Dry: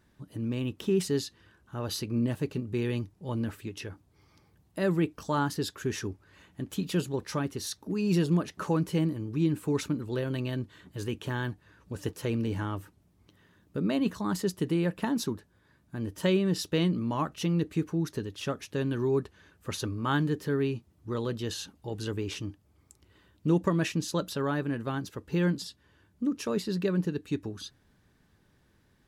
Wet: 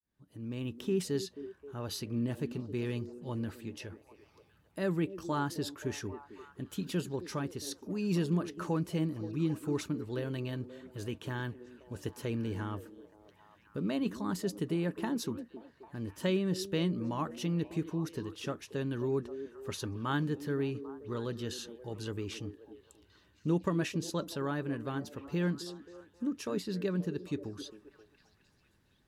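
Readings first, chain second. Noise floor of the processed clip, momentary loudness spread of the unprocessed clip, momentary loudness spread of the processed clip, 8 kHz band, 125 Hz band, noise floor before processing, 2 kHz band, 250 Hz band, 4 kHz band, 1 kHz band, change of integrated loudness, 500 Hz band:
-67 dBFS, 12 LU, 12 LU, -5.0 dB, -5.0 dB, -66 dBFS, -5.0 dB, -4.5 dB, -5.0 dB, -5.0 dB, -5.0 dB, -4.5 dB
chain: opening faded in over 0.68 s; delay with a stepping band-pass 0.265 s, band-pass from 320 Hz, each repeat 0.7 oct, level -9.5 dB; gain -5 dB

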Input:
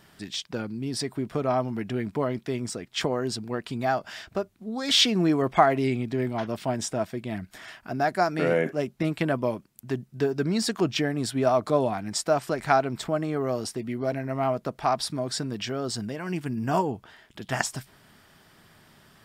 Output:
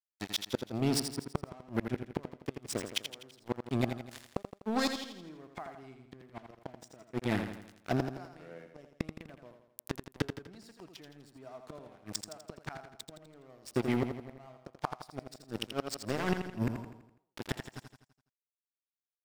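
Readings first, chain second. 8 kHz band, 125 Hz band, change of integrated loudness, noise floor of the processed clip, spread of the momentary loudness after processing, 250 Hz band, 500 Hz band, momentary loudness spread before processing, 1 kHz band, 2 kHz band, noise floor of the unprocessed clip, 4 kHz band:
-9.5 dB, -8.5 dB, -10.0 dB, under -85 dBFS, 19 LU, -8.5 dB, -13.5 dB, 11 LU, -15.0 dB, -10.5 dB, -58 dBFS, -12.0 dB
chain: crossover distortion -34.5 dBFS; flipped gate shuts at -23 dBFS, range -32 dB; feedback echo 83 ms, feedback 49%, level -7.5 dB; gain +6 dB

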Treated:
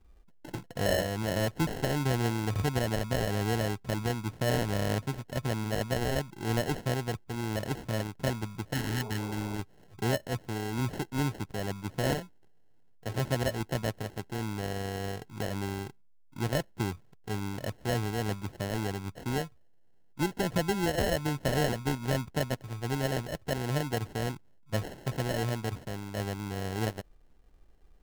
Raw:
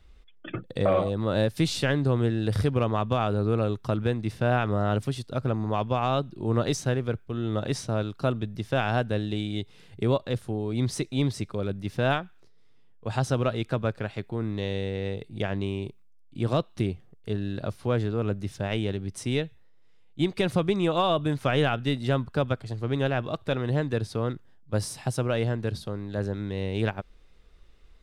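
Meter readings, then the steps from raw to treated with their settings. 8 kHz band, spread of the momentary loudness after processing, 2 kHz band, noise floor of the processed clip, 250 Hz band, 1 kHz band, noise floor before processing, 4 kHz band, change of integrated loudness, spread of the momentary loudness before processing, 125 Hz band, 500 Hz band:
+1.5 dB, 8 LU, -2.0 dB, -57 dBFS, -4.5 dB, -4.5 dB, -52 dBFS, -2.5 dB, -4.5 dB, 8 LU, -4.5 dB, -5.5 dB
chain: sample-and-hold 37×; spectral repair 8.76–9.53, 350–1200 Hz after; gain -4.5 dB

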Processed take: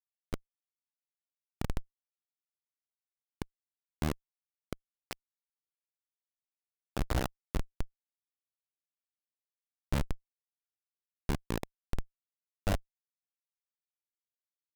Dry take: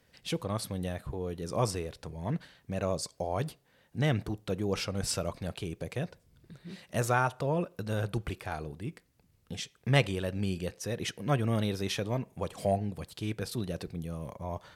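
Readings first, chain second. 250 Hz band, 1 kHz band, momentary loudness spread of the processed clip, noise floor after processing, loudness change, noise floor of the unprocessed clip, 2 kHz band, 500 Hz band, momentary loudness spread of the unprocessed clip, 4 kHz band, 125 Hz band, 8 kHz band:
-9.0 dB, -10.5 dB, 12 LU, under -85 dBFS, -6.0 dB, -68 dBFS, -10.5 dB, -13.0 dB, 11 LU, -11.5 dB, -9.5 dB, -11.5 dB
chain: cycle switcher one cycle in 2, muted; Schmitt trigger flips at -23.5 dBFS; gain +9.5 dB

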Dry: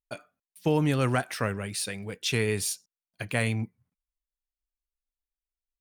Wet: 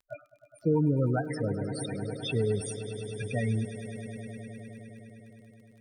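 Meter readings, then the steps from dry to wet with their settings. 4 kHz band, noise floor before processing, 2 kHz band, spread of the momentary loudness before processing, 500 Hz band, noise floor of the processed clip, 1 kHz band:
-7.5 dB, under -85 dBFS, -9.0 dB, 14 LU, 0.0 dB, -63 dBFS, -6.0 dB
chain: loudest bins only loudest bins 8; crackle 29/s -51 dBFS; swelling echo 0.103 s, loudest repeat 5, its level -16 dB

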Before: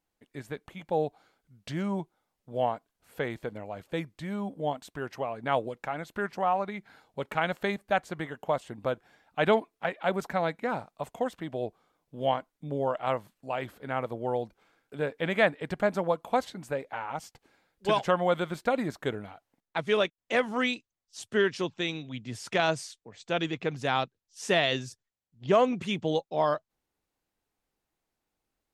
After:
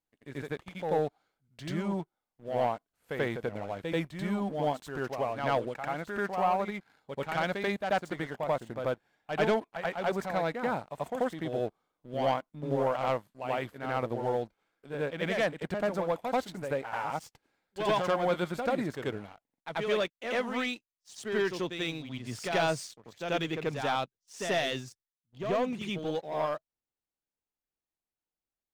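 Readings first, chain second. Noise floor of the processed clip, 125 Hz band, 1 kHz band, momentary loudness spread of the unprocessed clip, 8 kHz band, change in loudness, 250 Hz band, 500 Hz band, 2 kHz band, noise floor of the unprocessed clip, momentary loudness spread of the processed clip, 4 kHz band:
under -85 dBFS, -1.0 dB, -1.5 dB, 15 LU, -1.0 dB, -2.0 dB, -1.0 dB, -1.5 dB, -2.5 dB, -85 dBFS, 11 LU, -3.0 dB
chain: sample leveller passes 2; reverse echo 87 ms -6 dB; vocal rider within 4 dB 2 s; gain -9 dB

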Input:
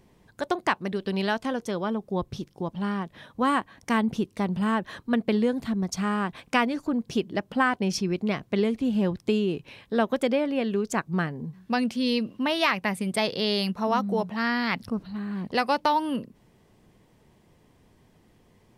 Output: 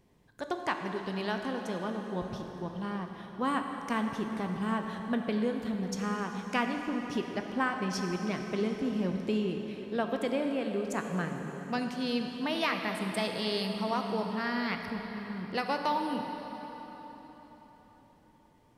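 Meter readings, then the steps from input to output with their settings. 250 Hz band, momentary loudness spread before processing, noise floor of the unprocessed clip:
-6.0 dB, 7 LU, -61 dBFS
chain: plate-style reverb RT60 4.6 s, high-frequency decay 0.8×, DRR 3.5 dB; gain -7.5 dB

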